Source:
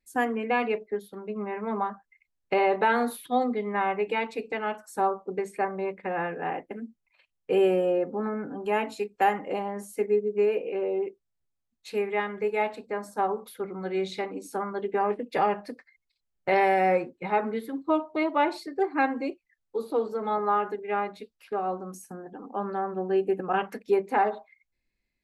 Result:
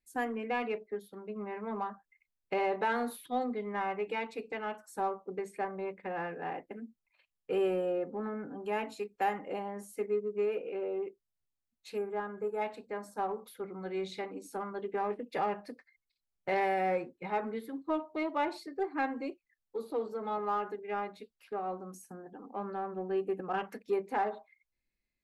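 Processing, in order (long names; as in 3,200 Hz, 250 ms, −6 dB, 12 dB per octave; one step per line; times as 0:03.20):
gain on a spectral selection 0:11.97–0:12.62, 1,700–6,500 Hz −15 dB
in parallel at −9 dB: soft clipping −27 dBFS, distortion −8 dB
on the sum: level −9 dB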